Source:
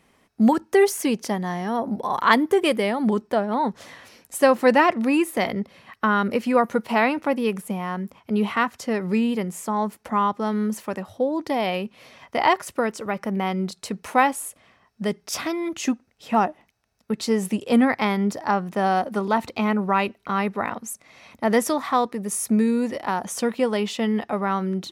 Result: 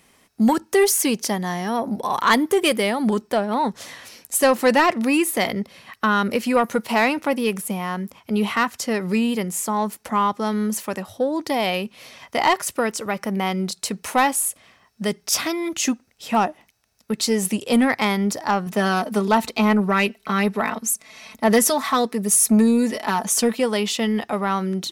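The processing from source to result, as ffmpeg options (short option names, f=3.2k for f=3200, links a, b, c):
-filter_complex "[0:a]asettb=1/sr,asplit=3[a][b][c];[a]atrim=end=18.664[d];[b]atrim=start=18.66:end=23.57,asetpts=PTS-STARTPTS,afade=t=in:d=0.004:c=qsin,afade=t=out:st=4.906:d=0.004:c=qsin,aecho=1:1:4.6:0.65,atrim=end_sample=216531[e];[c]atrim=start=23.566[f];[d][e]acrossfade=d=0.004:c1=hsin:c2=qsin[g];[g][f]acrossfade=d=0.004:c1=qsin:c2=hsin,highshelf=f=3.2k:g=10.5,acontrast=88,volume=-6dB"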